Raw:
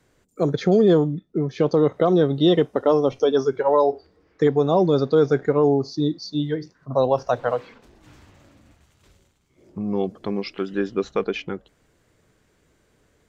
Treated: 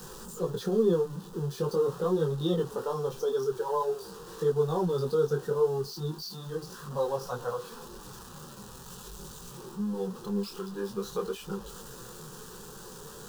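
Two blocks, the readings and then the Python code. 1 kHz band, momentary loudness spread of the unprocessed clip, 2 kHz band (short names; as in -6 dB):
-10.0 dB, 10 LU, -12.0 dB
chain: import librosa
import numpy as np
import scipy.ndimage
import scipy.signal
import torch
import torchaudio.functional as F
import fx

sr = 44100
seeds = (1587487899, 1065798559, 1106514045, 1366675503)

y = x + 0.5 * 10.0 ** (-27.5 / 20.0) * np.sign(x)
y = fx.fixed_phaser(y, sr, hz=430.0, stages=8)
y = fx.detune_double(y, sr, cents=15)
y = y * librosa.db_to_amplitude(-5.0)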